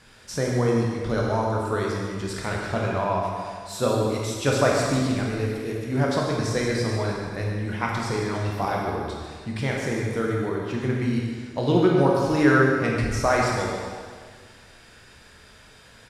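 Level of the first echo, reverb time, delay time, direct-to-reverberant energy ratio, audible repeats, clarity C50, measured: -9.5 dB, 1.8 s, 0.145 s, -3.0 dB, 1, -0.5 dB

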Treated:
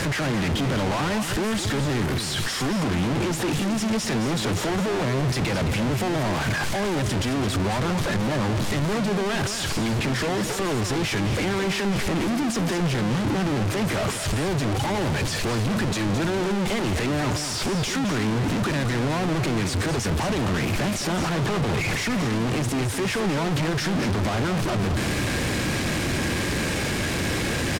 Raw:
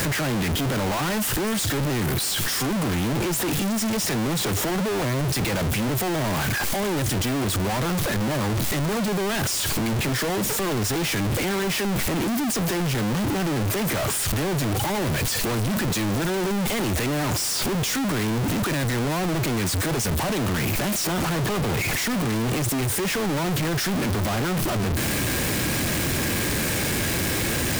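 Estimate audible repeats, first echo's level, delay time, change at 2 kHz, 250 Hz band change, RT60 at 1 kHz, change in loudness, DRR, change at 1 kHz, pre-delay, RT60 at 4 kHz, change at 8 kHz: 1, -9.0 dB, 0.216 s, 0.0 dB, +0.5 dB, none, -0.5 dB, none, +0.5 dB, none, none, -5.0 dB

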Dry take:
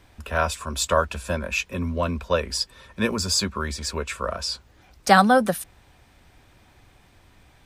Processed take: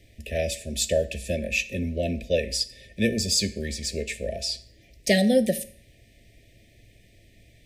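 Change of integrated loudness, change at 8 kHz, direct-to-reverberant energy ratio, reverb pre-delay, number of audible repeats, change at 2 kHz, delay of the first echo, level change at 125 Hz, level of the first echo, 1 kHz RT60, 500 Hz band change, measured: -2.5 dB, 0.0 dB, 11.0 dB, 9 ms, none, -5.0 dB, none, -1.5 dB, none, 0.50 s, 0.0 dB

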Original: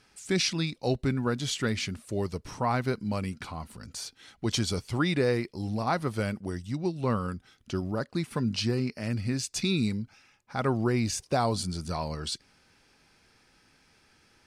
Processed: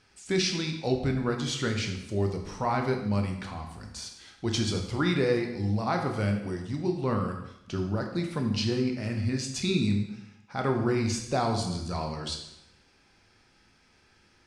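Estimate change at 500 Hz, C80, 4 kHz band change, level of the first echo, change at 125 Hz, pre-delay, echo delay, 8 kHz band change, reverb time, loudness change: +1.0 dB, 8.5 dB, 0.0 dB, none, +1.0 dB, 6 ms, none, -1.5 dB, 0.85 s, +1.0 dB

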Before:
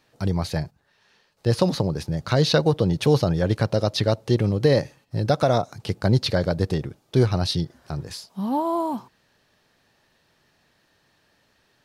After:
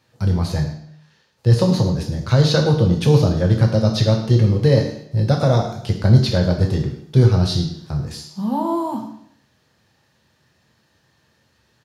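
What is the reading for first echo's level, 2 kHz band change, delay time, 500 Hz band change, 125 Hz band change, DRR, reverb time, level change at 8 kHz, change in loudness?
-14.0 dB, +1.0 dB, 0.105 s, +1.5 dB, +8.0 dB, 1.5 dB, 0.70 s, n/a, +5.0 dB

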